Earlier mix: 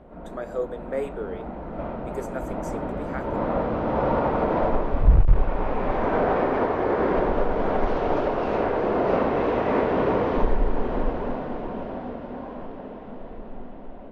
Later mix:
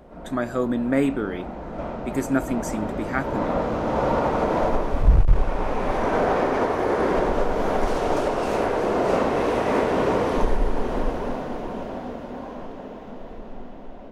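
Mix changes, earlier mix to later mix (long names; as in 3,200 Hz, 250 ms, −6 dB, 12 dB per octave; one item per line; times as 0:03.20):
speech: remove four-pole ladder high-pass 420 Hz, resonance 65%
background: remove high-frequency loss of the air 270 metres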